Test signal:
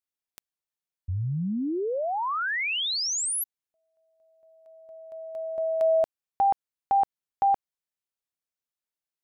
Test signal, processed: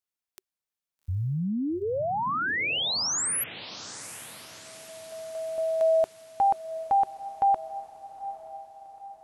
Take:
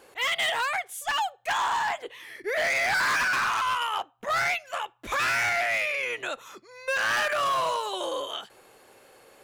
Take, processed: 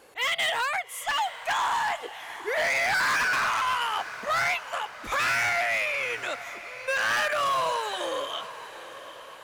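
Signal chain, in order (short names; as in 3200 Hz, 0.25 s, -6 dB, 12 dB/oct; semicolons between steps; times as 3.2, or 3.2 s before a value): notch 380 Hz, Q 12; on a send: diffused feedback echo 0.827 s, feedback 50%, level -14 dB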